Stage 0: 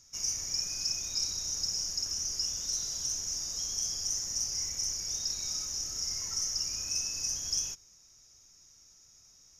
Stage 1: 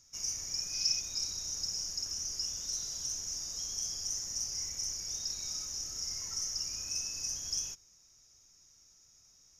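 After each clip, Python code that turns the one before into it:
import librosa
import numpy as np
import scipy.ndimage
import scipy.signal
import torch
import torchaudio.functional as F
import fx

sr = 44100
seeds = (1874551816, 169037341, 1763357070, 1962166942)

y = fx.spec_box(x, sr, start_s=0.74, length_s=0.27, low_hz=1900.0, high_hz=6100.0, gain_db=6)
y = F.gain(torch.from_numpy(y), -3.5).numpy()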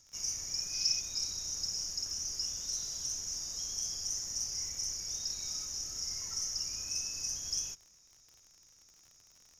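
y = fx.dmg_crackle(x, sr, seeds[0], per_s=61.0, level_db=-47.0)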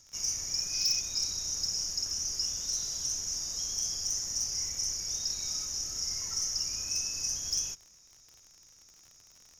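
y = np.clip(x, -10.0 ** (-26.5 / 20.0), 10.0 ** (-26.5 / 20.0))
y = F.gain(torch.from_numpy(y), 4.0).numpy()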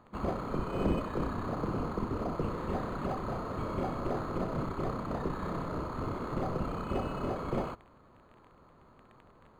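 y = np.interp(np.arange(len(x)), np.arange(len(x))[::8], x[::8])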